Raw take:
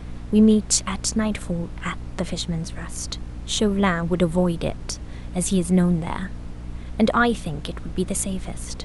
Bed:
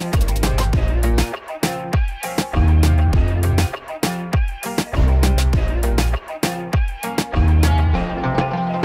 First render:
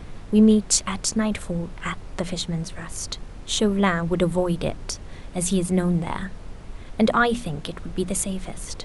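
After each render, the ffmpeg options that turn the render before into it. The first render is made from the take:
-af "bandreject=f=60:t=h:w=6,bandreject=f=120:t=h:w=6,bandreject=f=180:t=h:w=6,bandreject=f=240:t=h:w=6,bandreject=f=300:t=h:w=6"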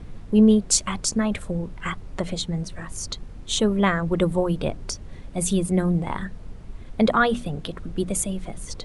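-af "afftdn=nr=7:nf=-39"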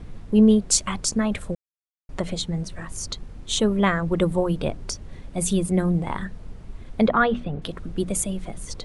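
-filter_complex "[0:a]asettb=1/sr,asplit=3[a][b][c];[a]atrim=end=7.074[d];[b]atrim=start=7.07:end=7.62,asetpts=PTS-STARTPTS,afade=t=in:d=0.004:c=qsin,afade=t=out:st=0.546:d=0.004:c=qsin,lowpass=2.8k[e];[c]atrim=start=7.616[f];[d][e]acrossfade=d=0.004:c1=hsin:c2=qsin[g];[g][f]acrossfade=d=0.004:c1=qsin:c2=hsin,asplit=3[h][i][j];[h]atrim=end=1.55,asetpts=PTS-STARTPTS,afade=t=out:st=1.546:d=0.004:c=hsin[k];[i]atrim=start=1.55:end=2.09,asetpts=PTS-STARTPTS,volume=0[l];[j]atrim=start=2.09,asetpts=PTS-STARTPTS,afade=t=in:d=0.004:c=hsin[m];[k][l][m]concat=n=3:v=0:a=1"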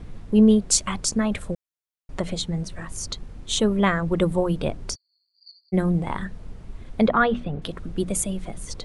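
-filter_complex "[0:a]asplit=3[a][b][c];[a]afade=t=out:st=4.94:d=0.02[d];[b]asuperpass=centerf=4500:order=12:qfactor=7.9,afade=t=in:st=4.94:d=0.02,afade=t=out:st=5.72:d=0.02[e];[c]afade=t=in:st=5.72:d=0.02[f];[d][e][f]amix=inputs=3:normalize=0"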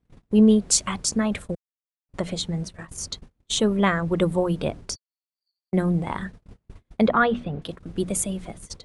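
-af "agate=range=-32dB:threshold=-32dB:ratio=16:detection=peak,highpass=f=68:p=1"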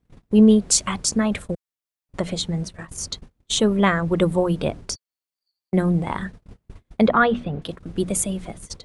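-af "volume=2.5dB,alimiter=limit=-1dB:level=0:latency=1"

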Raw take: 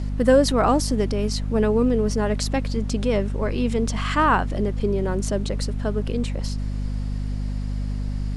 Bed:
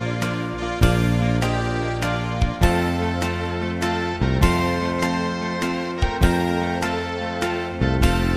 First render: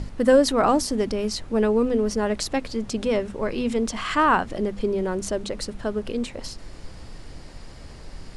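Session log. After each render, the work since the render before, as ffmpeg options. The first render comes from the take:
-af "bandreject=f=50:t=h:w=6,bandreject=f=100:t=h:w=6,bandreject=f=150:t=h:w=6,bandreject=f=200:t=h:w=6,bandreject=f=250:t=h:w=6"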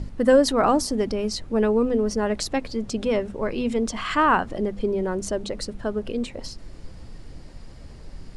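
-af "afftdn=nr=6:nf=-42"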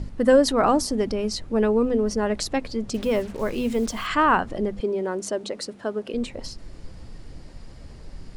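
-filter_complex "[0:a]asettb=1/sr,asplit=3[a][b][c];[a]atrim=end=2.944[d];[b]atrim=start=2.94:end=4.07,asetpts=PTS-STARTPTS,afade=t=in:d=0.004:c=qsin,afade=t=out:st=1.126:d=0.004:c=qsin,acrusher=bits=6:mix=0:aa=0.5[e];[c]atrim=start=4.066[f];[d][e]acrossfade=d=0.004:c1=hsin:c2=qsin[g];[g][f]acrossfade=d=0.004:c1=qsin:c2=hsin,asettb=1/sr,asplit=3[h][i][j];[h]atrim=end=4.804[k];[i]atrim=start=4.8:end=6.14,asetpts=PTS-STARTPTS,afade=t=in:d=0.004:c=qsin,afade=t=out:st=1.336:d=0.004:c=qsin,highpass=240[l];[j]atrim=start=6.136[m];[k][l]acrossfade=d=0.004:c1=hsin:c2=qsin[n];[n][m]acrossfade=d=0.004:c1=qsin:c2=hsin"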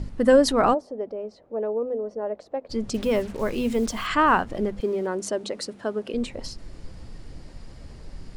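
-filter_complex "[0:a]asplit=3[a][b][c];[a]afade=t=out:st=0.73:d=0.02[d];[b]bandpass=f=580:t=q:w=2.6,afade=t=in:st=0.73:d=0.02,afade=t=out:st=2.69:d=0.02[e];[c]afade=t=in:st=2.69:d=0.02[f];[d][e][f]amix=inputs=3:normalize=0,asettb=1/sr,asplit=3[g][h][i];[g]atrim=end=4.264[j];[h]atrim=start=4.26:end=5.07,asetpts=PTS-STARTPTS,afade=t=in:d=0.004:c=qsin,afade=t=out:st=0.806:d=0.004:c=qsin,aeval=exprs='sgn(val(0))*max(abs(val(0))-0.00335,0)':c=same[k];[i]atrim=start=5.066[l];[j][k]acrossfade=d=0.004:c1=hsin:c2=qsin[m];[m][l]acrossfade=d=0.004:c1=qsin:c2=hsin"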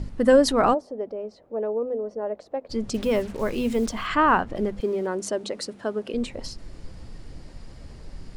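-filter_complex "[0:a]asettb=1/sr,asplit=3[a][b][c];[a]atrim=end=3.894[d];[b]atrim=start=3.89:end=4.56,asetpts=PTS-STARTPTS,afade=t=in:d=0.004:c=qsin,afade=t=out:st=0.666:d=0.004:c=qsin,aemphasis=mode=reproduction:type=cd[e];[c]atrim=start=4.556[f];[d][e]acrossfade=d=0.004:c1=hsin:c2=qsin[g];[g][f]acrossfade=d=0.004:c1=qsin:c2=hsin"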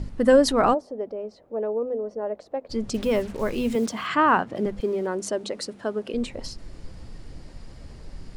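-filter_complex "[0:a]asettb=1/sr,asplit=3[a][b][c];[a]atrim=end=3.754[d];[b]atrim=start=3.75:end=4.66,asetpts=PTS-STARTPTS,afade=t=in:d=0.004:c=qsin,afade=t=out:st=0.906:d=0.004:c=qsin,highpass=f=110:w=0.5412,highpass=f=110:w=1.3066[e];[c]atrim=start=4.656[f];[d][e]acrossfade=d=0.004:c1=hsin:c2=qsin[g];[g][f]acrossfade=d=0.004:c1=qsin:c2=hsin"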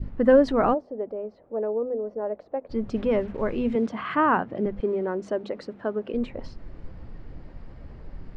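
-af "lowpass=2k,adynamicequalizer=threshold=0.0178:dfrequency=1100:dqfactor=0.96:tfrequency=1100:tqfactor=0.96:attack=5:release=100:ratio=0.375:range=2.5:mode=cutabove:tftype=bell"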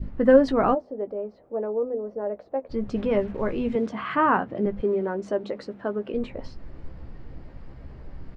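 -filter_complex "[0:a]asplit=2[a][b];[b]adelay=15,volume=-9dB[c];[a][c]amix=inputs=2:normalize=0"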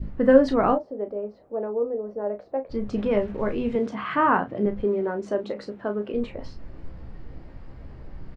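-filter_complex "[0:a]asplit=2[a][b];[b]adelay=34,volume=-9.5dB[c];[a][c]amix=inputs=2:normalize=0"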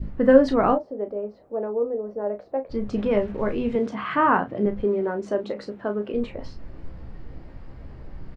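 -af "volume=1dB"

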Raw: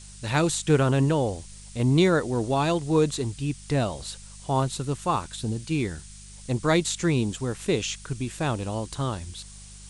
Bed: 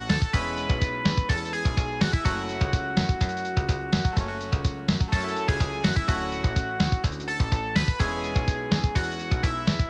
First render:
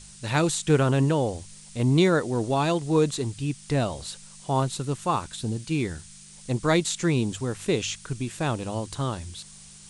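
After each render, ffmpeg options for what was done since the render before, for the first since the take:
-af "bandreject=f=50:t=h:w=4,bandreject=f=100:t=h:w=4"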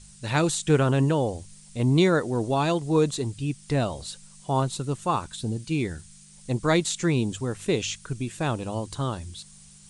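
-af "afftdn=nr=6:nf=-47"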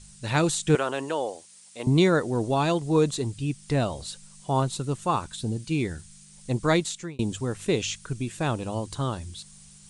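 -filter_complex "[0:a]asettb=1/sr,asplit=3[a][b][c];[a]atrim=end=0.754[d];[b]atrim=start=0.75:end=1.87,asetpts=PTS-STARTPTS,afade=t=in:d=0.004:c=qsin,afade=t=out:st=1.116:d=0.004:c=qsin,highpass=480[e];[c]atrim=start=1.866[f];[d][e]acrossfade=d=0.004:c1=hsin:c2=qsin[g];[g][f]acrossfade=d=0.004:c1=qsin:c2=hsin,asplit=2[h][i];[h]atrim=end=7.19,asetpts=PTS-STARTPTS,afade=t=out:st=6.72:d=0.47[j];[i]atrim=start=7.19,asetpts=PTS-STARTPTS,afade=t=in:d=0.004:c=hsin[k];[j][k]concat=n=2:v=0:a=1"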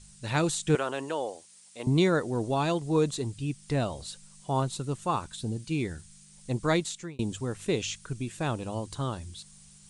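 -af "volume=-3.5dB"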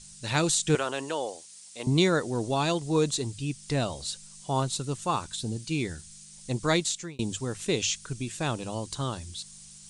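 -af "equalizer=f=5.8k:w=0.58:g=8,bandreject=f=50:t=h:w=6,bandreject=f=100:t=h:w=6"

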